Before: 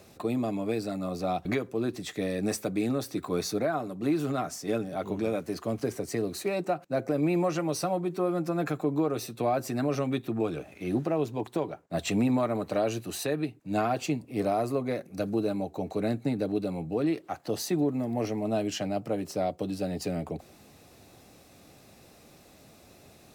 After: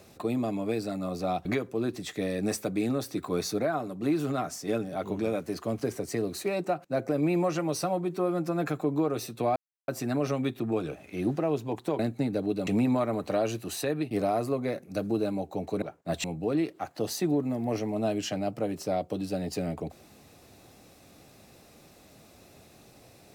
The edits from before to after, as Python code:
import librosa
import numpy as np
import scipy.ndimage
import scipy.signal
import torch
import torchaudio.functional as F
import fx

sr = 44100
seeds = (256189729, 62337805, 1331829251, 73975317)

y = fx.edit(x, sr, fx.insert_silence(at_s=9.56, length_s=0.32),
    fx.swap(start_s=11.67, length_s=0.42, other_s=16.05, other_length_s=0.68),
    fx.cut(start_s=13.53, length_s=0.81), tone=tone)